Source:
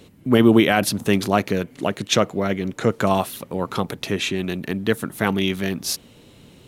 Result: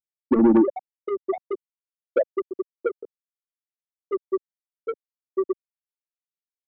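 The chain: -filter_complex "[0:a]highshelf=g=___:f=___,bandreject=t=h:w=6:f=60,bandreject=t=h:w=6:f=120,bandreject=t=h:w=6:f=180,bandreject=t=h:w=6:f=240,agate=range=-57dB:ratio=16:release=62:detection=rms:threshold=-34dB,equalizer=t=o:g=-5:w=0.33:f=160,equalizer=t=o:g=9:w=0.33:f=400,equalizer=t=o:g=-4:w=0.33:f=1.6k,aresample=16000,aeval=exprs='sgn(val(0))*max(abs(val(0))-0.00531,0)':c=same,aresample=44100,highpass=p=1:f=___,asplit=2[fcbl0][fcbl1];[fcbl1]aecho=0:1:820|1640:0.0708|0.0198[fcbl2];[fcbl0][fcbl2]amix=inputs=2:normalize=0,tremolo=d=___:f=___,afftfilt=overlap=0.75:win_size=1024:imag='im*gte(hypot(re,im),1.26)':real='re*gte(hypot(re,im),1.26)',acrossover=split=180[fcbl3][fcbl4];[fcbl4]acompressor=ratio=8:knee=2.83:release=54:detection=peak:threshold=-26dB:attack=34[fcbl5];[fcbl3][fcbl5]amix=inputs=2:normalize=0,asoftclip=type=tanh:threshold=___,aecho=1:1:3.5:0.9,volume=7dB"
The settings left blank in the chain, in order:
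7.5, 3.1k, 74, 0.182, 140, -21.5dB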